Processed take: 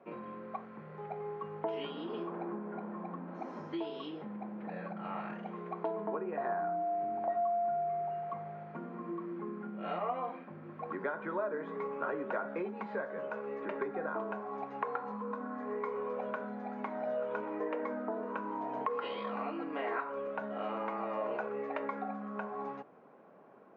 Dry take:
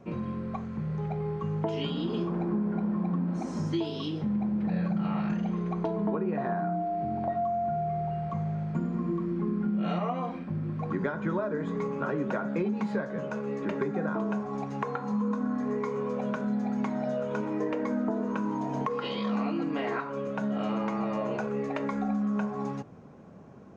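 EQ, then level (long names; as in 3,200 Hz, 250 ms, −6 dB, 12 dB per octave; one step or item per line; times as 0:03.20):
band-pass filter 450–2,400 Hz
high-frequency loss of the air 74 metres
−1.5 dB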